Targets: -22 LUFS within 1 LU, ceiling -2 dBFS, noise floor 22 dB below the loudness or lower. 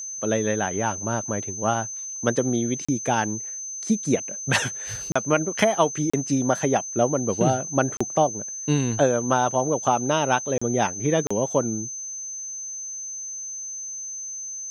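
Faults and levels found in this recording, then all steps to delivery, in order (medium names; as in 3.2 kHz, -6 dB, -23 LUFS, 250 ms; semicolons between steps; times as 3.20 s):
dropouts 6; longest dropout 35 ms; steady tone 6.2 kHz; tone level -31 dBFS; loudness -24.5 LUFS; peak level -5.0 dBFS; loudness target -22.0 LUFS
-> interpolate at 2.85/5.12/6.10/7.97/10.58/11.27 s, 35 ms; band-stop 6.2 kHz, Q 30; trim +2.5 dB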